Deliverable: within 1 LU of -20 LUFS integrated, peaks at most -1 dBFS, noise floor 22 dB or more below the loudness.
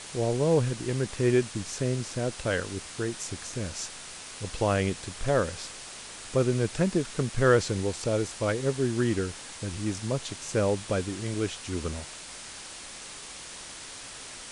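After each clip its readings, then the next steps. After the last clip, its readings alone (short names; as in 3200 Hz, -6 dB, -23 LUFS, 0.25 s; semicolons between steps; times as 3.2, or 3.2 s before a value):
noise floor -43 dBFS; noise floor target -51 dBFS; loudness -29.0 LUFS; peak -9.0 dBFS; loudness target -20.0 LUFS
-> noise print and reduce 8 dB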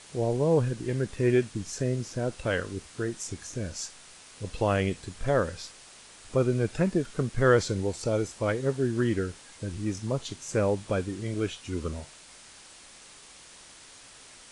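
noise floor -51 dBFS; loudness -29.0 LUFS; peak -9.0 dBFS; loudness target -20.0 LUFS
-> gain +9 dB; limiter -1 dBFS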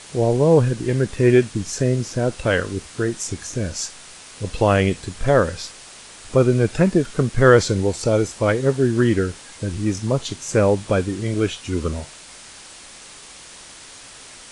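loudness -20.0 LUFS; peak -1.0 dBFS; noise floor -42 dBFS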